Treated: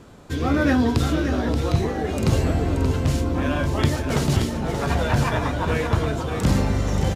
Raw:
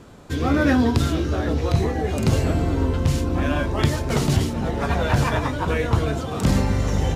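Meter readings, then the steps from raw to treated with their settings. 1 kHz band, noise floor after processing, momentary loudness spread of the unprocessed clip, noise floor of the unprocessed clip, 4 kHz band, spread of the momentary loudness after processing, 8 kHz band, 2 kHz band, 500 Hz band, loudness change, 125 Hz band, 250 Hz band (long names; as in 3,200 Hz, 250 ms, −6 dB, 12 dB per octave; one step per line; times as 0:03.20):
−0.5 dB, −28 dBFS, 4 LU, −28 dBFS, −0.5 dB, 4 LU, −0.5 dB, −0.5 dB, −0.5 dB, −0.5 dB, −0.5 dB, −0.5 dB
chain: single-tap delay 579 ms −8 dB
level −1 dB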